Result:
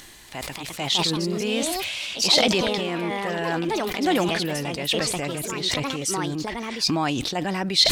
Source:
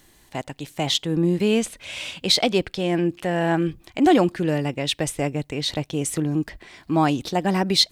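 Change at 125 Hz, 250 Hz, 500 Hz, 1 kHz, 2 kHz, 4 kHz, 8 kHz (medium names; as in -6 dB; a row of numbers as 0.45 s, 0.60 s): -5.0 dB, -4.5 dB, -2.5 dB, -1.5 dB, +2.5 dB, +2.5 dB, +3.0 dB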